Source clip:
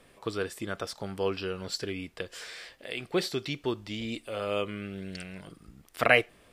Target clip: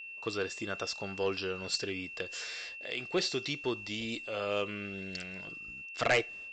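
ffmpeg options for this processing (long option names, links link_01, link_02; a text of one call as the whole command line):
ffmpeg -i in.wav -af "agate=range=-33dB:threshold=-49dB:ratio=3:detection=peak,bass=frequency=250:gain=-4,treble=frequency=4000:gain=7,aresample=16000,asoftclip=type=tanh:threshold=-18dB,aresample=44100,aeval=exprs='val(0)+0.00891*sin(2*PI*2700*n/s)':channel_layout=same,volume=-1.5dB" out.wav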